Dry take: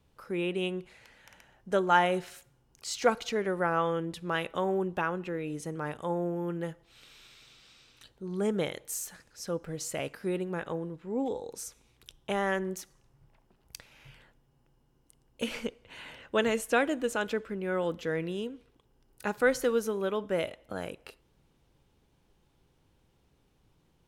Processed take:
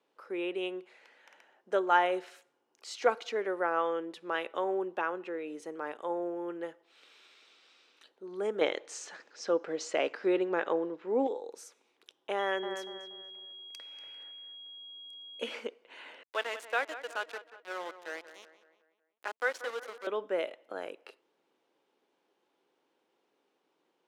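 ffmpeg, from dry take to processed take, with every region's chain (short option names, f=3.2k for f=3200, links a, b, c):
-filter_complex "[0:a]asettb=1/sr,asplit=3[a][b][c];[a]atrim=end=8.614[d];[b]atrim=start=8.61:end=11.27,asetpts=PTS-STARTPTS,afade=t=in:d=0.004:c=qsin,afade=t=out:st=2.656:d=0.004:c=qsin,lowpass=f=6.8k:w=0.5412,lowpass=f=6.8k:w=1.3066,acontrast=88[e];[c]atrim=start=11.266[f];[d][e]acrossfade=d=0.004:c1=hsin:c2=qsin[g];[g][f]acrossfade=d=0.004:c1=qsin:c2=hsin,asettb=1/sr,asplit=3[h][i][j];[h]atrim=end=12.394[k];[i]atrim=start=12.39:end=15.54,asetpts=PTS-STARTPTS,afade=t=in:d=0.004:c=qsin,afade=t=out:st=3.146:d=0.004:c=qsin,aeval=exprs='val(0)+0.0112*sin(2*PI*3300*n/s)':c=same,asplit=2[l][m];[m]adelay=238,lowpass=f=2.3k:p=1,volume=-7.5dB,asplit=2[n][o];[o]adelay=238,lowpass=f=2.3k:p=1,volume=0.37,asplit=2[p][q];[q]adelay=238,lowpass=f=2.3k:p=1,volume=0.37,asplit=2[r][s];[s]adelay=238,lowpass=f=2.3k:p=1,volume=0.37[t];[l][n][p][r][t]amix=inputs=5:normalize=0,atrim=end_sample=138915[u];[j]atrim=start=15.536[v];[k][u]acrossfade=d=0.004:c1=hsin:c2=qsin[w];[w][v]acrossfade=d=0.004:c1=qsin:c2=hsin,asettb=1/sr,asplit=3[x][y][z];[x]atrim=end=16.234[aa];[y]atrim=start=16.23:end=20.07,asetpts=PTS-STARTPTS,afade=t=in:d=0.004:c=qsin,afade=t=out:st=3.836:d=0.004:c=qsin,highpass=750,aeval=exprs='val(0)*gte(abs(val(0)),0.0168)':c=same,asplit=2[ab][ac];[ac]adelay=184,lowpass=f=3.3k:p=1,volume=-13dB,asplit=2[ad][ae];[ae]adelay=184,lowpass=f=3.3k:p=1,volume=0.5,asplit=2[af][ag];[ag]adelay=184,lowpass=f=3.3k:p=1,volume=0.5,asplit=2[ah][ai];[ai]adelay=184,lowpass=f=3.3k:p=1,volume=0.5,asplit=2[aj][ak];[ak]adelay=184,lowpass=f=3.3k:p=1,volume=0.5[al];[ab][ad][af][ah][aj][al]amix=inputs=6:normalize=0,atrim=end_sample=169344[am];[z]atrim=start=20.066[an];[aa][am]acrossfade=d=0.004:c1=hsin:c2=qsin[ao];[ao][an]acrossfade=d=0.004:c1=qsin:c2=hsin,highpass=f=320:w=0.5412,highpass=f=320:w=1.3066,aemphasis=mode=reproduction:type=50fm,volume=-1.5dB"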